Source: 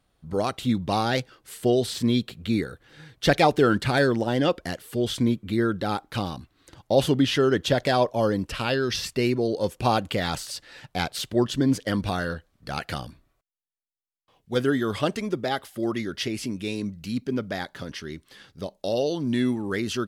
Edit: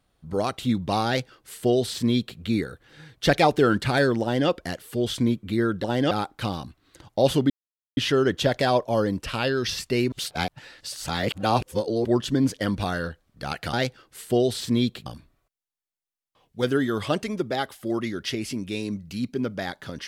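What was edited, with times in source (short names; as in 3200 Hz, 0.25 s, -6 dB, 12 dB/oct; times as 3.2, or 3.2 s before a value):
1.06–2.39 copy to 12.99
4.22–4.49 copy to 5.84
7.23 insert silence 0.47 s
9.38–11.31 reverse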